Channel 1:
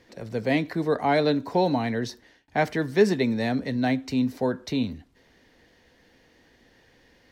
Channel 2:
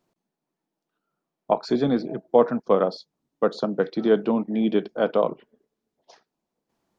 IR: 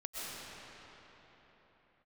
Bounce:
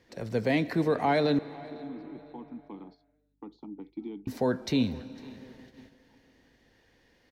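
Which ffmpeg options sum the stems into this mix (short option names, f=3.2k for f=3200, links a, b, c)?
-filter_complex "[0:a]alimiter=limit=-17dB:level=0:latency=1:release=74,volume=0dB,asplit=3[a][b][c];[a]atrim=end=1.39,asetpts=PTS-STARTPTS,afade=t=out:st=1.386:d=0.004:c=hsin[d];[b]atrim=start=1.39:end=4.27,asetpts=PTS-STARTPTS,volume=0[e];[c]atrim=start=4.27,asetpts=PTS-STARTPTS,afade=t=in:d=0.004:c=hsin[f];[d][e][f]concat=n=3:v=0:a=1,asplit=4[g][h][i][j];[h]volume=-18dB[k];[i]volume=-22dB[l];[1:a]acrossover=split=180|3000[m][n][o];[n]acompressor=threshold=-34dB:ratio=3[p];[m][p][o]amix=inputs=3:normalize=0,asplit=3[q][r][s];[q]bandpass=f=300:t=q:w=8,volume=0dB[t];[r]bandpass=f=870:t=q:w=8,volume=-6dB[u];[s]bandpass=f=2.24k:t=q:w=8,volume=-9dB[v];[t][u][v]amix=inputs=3:normalize=0,aeval=exprs='val(0)+0.000316*(sin(2*PI*50*n/s)+sin(2*PI*2*50*n/s)/2+sin(2*PI*3*50*n/s)/3+sin(2*PI*4*50*n/s)/4+sin(2*PI*5*50*n/s)/5)':c=same,volume=1.5dB[w];[j]apad=whole_len=308255[x];[w][x]sidechaincompress=threshold=-46dB:ratio=8:attack=16:release=471[y];[2:a]atrim=start_sample=2205[z];[k][z]afir=irnorm=-1:irlink=0[aa];[l]aecho=0:1:503|1006|1509|2012:1|0.28|0.0784|0.022[ab];[g][y][aa][ab]amix=inputs=4:normalize=0,agate=range=-7dB:threshold=-51dB:ratio=16:detection=peak"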